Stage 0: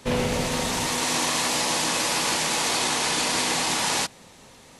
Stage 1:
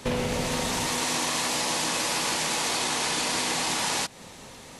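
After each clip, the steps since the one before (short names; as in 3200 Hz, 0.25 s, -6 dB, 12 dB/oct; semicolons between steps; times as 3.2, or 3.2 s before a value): compressor 3:1, threshold -31 dBFS, peak gain reduction 8.5 dB; gain +4.5 dB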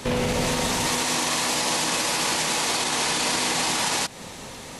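limiter -21 dBFS, peak gain reduction 7.5 dB; gain +6.5 dB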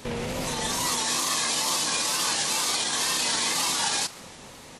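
frequency-shifting echo 0.149 s, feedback 58%, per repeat +99 Hz, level -16 dB; wow and flutter 94 cents; spectral noise reduction 7 dB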